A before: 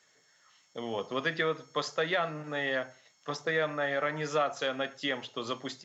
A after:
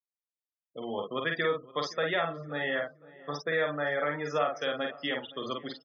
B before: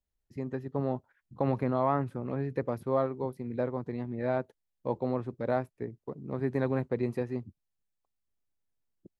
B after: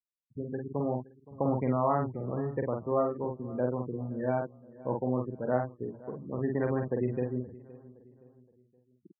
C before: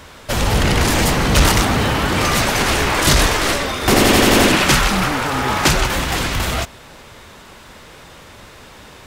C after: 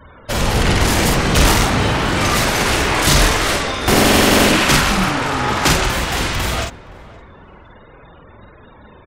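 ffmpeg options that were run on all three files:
-filter_complex "[0:a]afftfilt=real='re*gte(hypot(re,im),0.0178)':imag='im*gte(hypot(re,im),0.0178)':win_size=1024:overlap=0.75,asplit=2[a][b];[b]adelay=48,volume=-3.5dB[c];[a][c]amix=inputs=2:normalize=0,asplit=2[d][e];[e]adelay=519,lowpass=f=1.5k:p=1,volume=-19.5dB,asplit=2[f][g];[g]adelay=519,lowpass=f=1.5k:p=1,volume=0.44,asplit=2[h][i];[i]adelay=519,lowpass=f=1.5k:p=1,volume=0.44[j];[d][f][h][j]amix=inputs=4:normalize=0,volume=-1dB"

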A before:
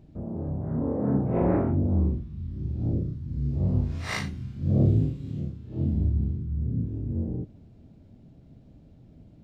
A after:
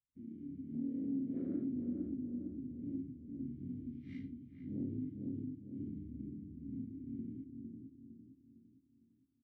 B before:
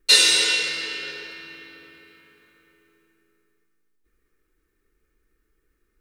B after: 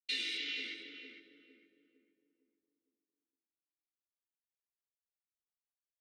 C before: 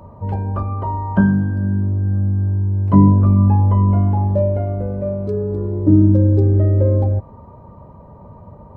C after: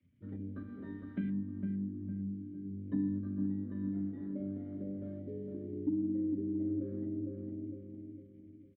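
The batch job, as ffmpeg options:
-filter_complex "[0:a]acrossover=split=100[a][b];[b]aeval=exprs='sgn(val(0))*max(abs(val(0))-0.00473,0)':c=same[c];[a][c]amix=inputs=2:normalize=0,afwtdn=0.0447,asplit=3[d][e][f];[d]bandpass=f=270:t=q:w=8,volume=0dB[g];[e]bandpass=f=2.29k:t=q:w=8,volume=-6dB[h];[f]bandpass=f=3.01k:t=q:w=8,volume=-9dB[i];[g][h][i]amix=inputs=3:normalize=0,flanger=delay=8:depth=4.7:regen=66:speed=0.56:shape=sinusoidal,asplit=2[j][k];[k]adelay=456,lowpass=f=940:p=1,volume=-4dB,asplit=2[l][m];[m]adelay=456,lowpass=f=940:p=1,volume=0.45,asplit=2[n][o];[o]adelay=456,lowpass=f=940:p=1,volume=0.45,asplit=2[p][q];[q]adelay=456,lowpass=f=940:p=1,volume=0.45,asplit=2[r][s];[s]adelay=456,lowpass=f=940:p=1,volume=0.45,asplit=2[t][u];[u]adelay=456,lowpass=f=940:p=1,volume=0.45[v];[j][l][n][p][r][t][v]amix=inputs=7:normalize=0,aeval=exprs='0.224*(cos(1*acos(clip(val(0)/0.224,-1,1)))-cos(1*PI/2))+0.00158*(cos(5*acos(clip(val(0)/0.224,-1,1)))-cos(5*PI/2))':c=same,acompressor=threshold=-40dB:ratio=2,bandreject=f=82.03:t=h:w=4,bandreject=f=164.06:t=h:w=4,bandreject=f=246.09:t=h:w=4,bandreject=f=328.12:t=h:w=4,volume=3dB"

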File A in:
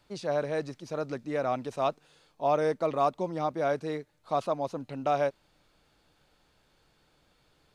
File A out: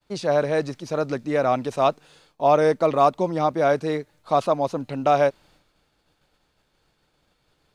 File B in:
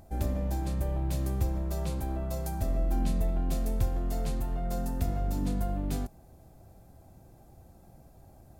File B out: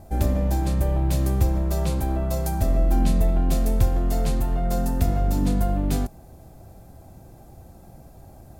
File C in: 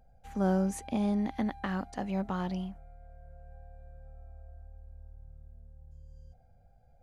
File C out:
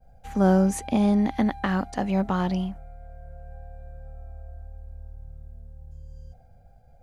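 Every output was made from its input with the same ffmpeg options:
-af "agate=range=-33dB:threshold=-59dB:ratio=3:detection=peak,volume=8.5dB"

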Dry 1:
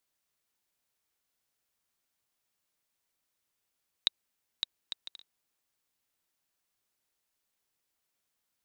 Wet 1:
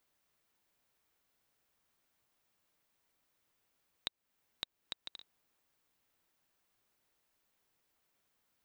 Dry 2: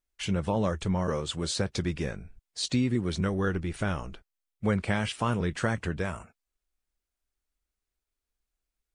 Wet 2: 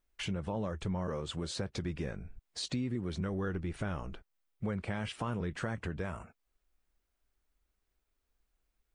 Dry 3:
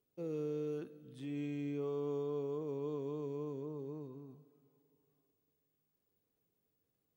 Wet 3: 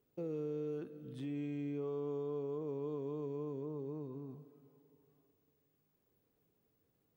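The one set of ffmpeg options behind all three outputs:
-filter_complex "[0:a]equalizer=f=9.1k:t=o:w=2.8:g=-7.5,asplit=2[a][b];[b]alimiter=limit=-23.5dB:level=0:latency=1,volume=0dB[c];[a][c]amix=inputs=2:normalize=0,acompressor=threshold=-44dB:ratio=2,volume=1dB"

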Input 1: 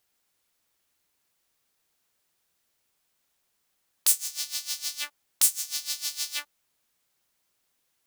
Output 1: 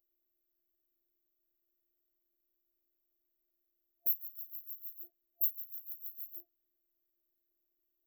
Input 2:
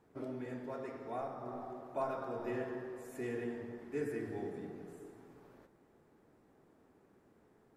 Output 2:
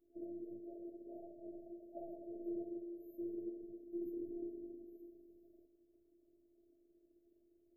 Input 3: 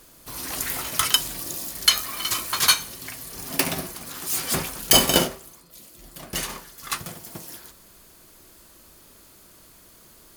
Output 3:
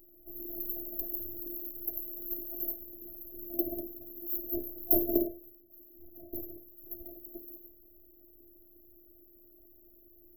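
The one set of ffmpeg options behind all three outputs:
-af "afftfilt=real='hypot(re,im)*cos(PI*b)':imag='0':win_size=512:overlap=0.75,afftfilt=real='re*(1-between(b*sr/4096,680,12000))':imag='im*(1-between(b*sr/4096,680,12000))':win_size=4096:overlap=0.75,volume=-1dB"

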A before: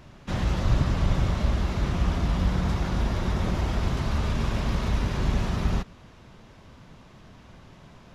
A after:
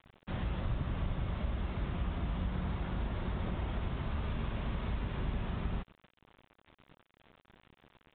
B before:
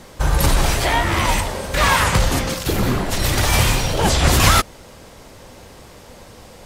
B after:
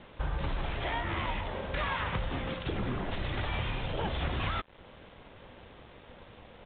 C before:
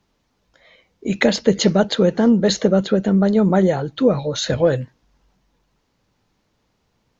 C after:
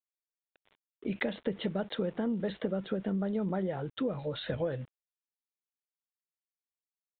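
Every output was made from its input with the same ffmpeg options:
-af "acompressor=threshold=-21dB:ratio=4,aresample=11025,aeval=exprs='val(0)*gte(abs(val(0)),0.00708)':c=same,aresample=44100,aresample=8000,aresample=44100,volume=-9dB"

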